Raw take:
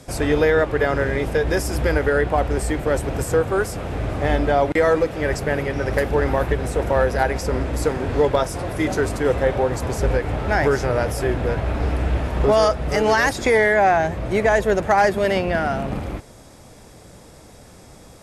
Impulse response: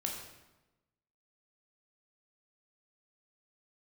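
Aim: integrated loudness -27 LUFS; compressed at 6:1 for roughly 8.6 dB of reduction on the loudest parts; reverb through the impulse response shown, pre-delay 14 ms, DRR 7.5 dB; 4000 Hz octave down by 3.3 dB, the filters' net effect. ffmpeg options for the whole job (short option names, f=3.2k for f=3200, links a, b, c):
-filter_complex "[0:a]equalizer=f=4k:t=o:g=-4.5,acompressor=threshold=-22dB:ratio=6,asplit=2[a][b];[1:a]atrim=start_sample=2205,adelay=14[c];[b][c]afir=irnorm=-1:irlink=0,volume=-9dB[d];[a][d]amix=inputs=2:normalize=0,volume=-1.5dB"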